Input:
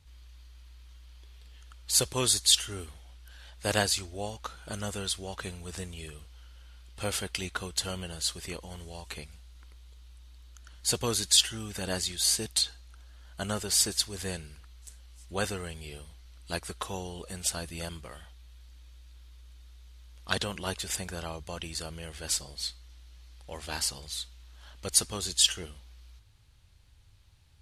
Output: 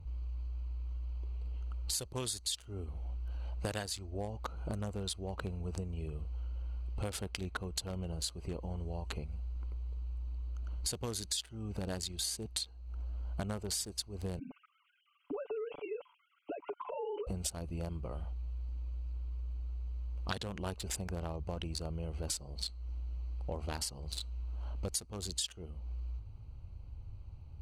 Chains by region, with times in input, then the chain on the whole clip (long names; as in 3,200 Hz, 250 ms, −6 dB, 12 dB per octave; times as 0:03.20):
0:14.39–0:17.27: three sine waves on the formant tracks + downward compressor 16 to 1, threshold −43 dBFS + comb filter 6.9 ms, depth 89%
whole clip: adaptive Wiener filter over 25 samples; low-shelf EQ 140 Hz +5 dB; downward compressor 10 to 1, threshold −44 dBFS; level +9 dB